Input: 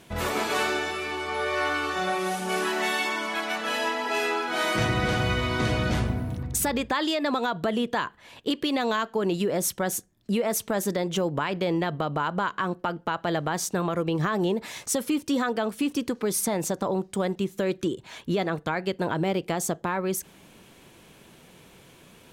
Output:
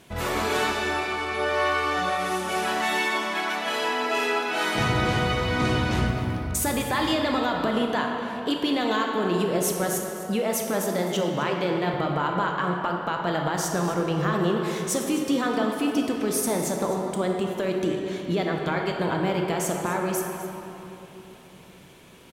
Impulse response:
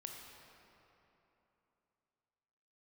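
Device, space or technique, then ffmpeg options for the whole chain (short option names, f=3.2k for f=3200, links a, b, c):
cave: -filter_complex "[0:a]asettb=1/sr,asplit=3[a][b][c];[a]atrim=end=10.564[d];[b]atrim=start=10.56:end=11.94,asetpts=PTS-STARTPTS,afade=t=in:d=0.004:c=qsin,afade=t=out:st=1.376:d=0.004:c=qsin,highpass=130[e];[c]atrim=start=11.936[f];[d][e]acrossfade=d=0.004:c1=hsin:c2=qsin[g];[g][f]acrossfade=d=0.004:c1=qsin:c2=hsin,aecho=1:1:256:0.178[h];[1:a]atrim=start_sample=2205[i];[h][i]afir=irnorm=-1:irlink=0,volume=5dB"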